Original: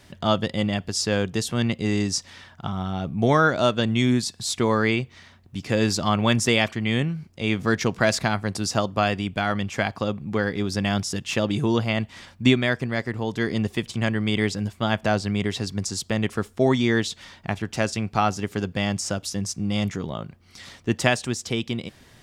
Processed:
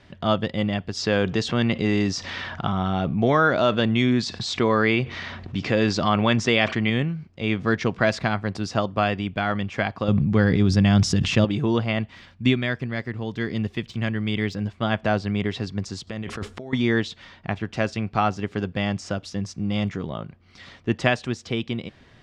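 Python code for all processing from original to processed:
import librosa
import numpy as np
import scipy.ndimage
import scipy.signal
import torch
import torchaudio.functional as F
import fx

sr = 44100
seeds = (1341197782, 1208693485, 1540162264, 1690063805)

y = fx.chain(x, sr, fx.lowpass(hz=7700.0, slope=24),
    fx.low_shelf(hz=190.0, db=-5.0),
    fx.env_flatten(amount_pct=50), at=(0.97, 6.9))
y = fx.chain(y, sr, fx.bass_treble(bass_db=10, treble_db=6),
    fx.sustainer(db_per_s=21.0), at=(10.08, 11.45))
y = fx.chain(y, sr, fx.peak_eq(hz=710.0, db=-5.0, octaves=2.6),
    fx.resample_bad(factor=2, down='none', up='zero_stuff'), at=(12.15, 14.55))
y = fx.chain(y, sr, fx.high_shelf(hz=6500.0, db=8.0),
    fx.over_compress(threshold_db=-32.0, ratio=-1.0), at=(16.07, 16.73))
y = scipy.signal.sosfilt(scipy.signal.butter(2, 3600.0, 'lowpass', fs=sr, output='sos'), y)
y = fx.notch(y, sr, hz=880.0, q=22.0)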